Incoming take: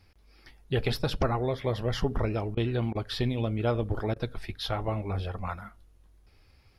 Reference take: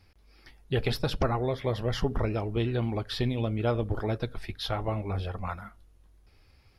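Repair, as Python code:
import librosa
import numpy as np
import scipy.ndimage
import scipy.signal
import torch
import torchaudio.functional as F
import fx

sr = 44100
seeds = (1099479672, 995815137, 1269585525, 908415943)

y = fx.fix_interpolate(x, sr, at_s=(2.55, 2.93, 4.14), length_ms=20.0)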